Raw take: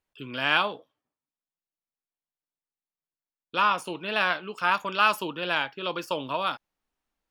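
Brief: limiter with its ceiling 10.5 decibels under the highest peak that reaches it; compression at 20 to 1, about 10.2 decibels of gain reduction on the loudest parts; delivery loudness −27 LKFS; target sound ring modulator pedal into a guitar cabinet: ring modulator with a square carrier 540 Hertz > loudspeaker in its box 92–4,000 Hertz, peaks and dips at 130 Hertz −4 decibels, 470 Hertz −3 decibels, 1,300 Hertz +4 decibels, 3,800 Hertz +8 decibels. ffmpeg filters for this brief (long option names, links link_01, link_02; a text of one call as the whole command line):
ffmpeg -i in.wav -af "acompressor=threshold=-27dB:ratio=20,alimiter=level_in=0.5dB:limit=-24dB:level=0:latency=1,volume=-0.5dB,aeval=exprs='val(0)*sgn(sin(2*PI*540*n/s))':channel_layout=same,highpass=92,equalizer=frequency=130:width_type=q:width=4:gain=-4,equalizer=frequency=470:width_type=q:width=4:gain=-3,equalizer=frequency=1300:width_type=q:width=4:gain=4,equalizer=frequency=3800:width_type=q:width=4:gain=8,lowpass=frequency=4000:width=0.5412,lowpass=frequency=4000:width=1.3066,volume=8.5dB" out.wav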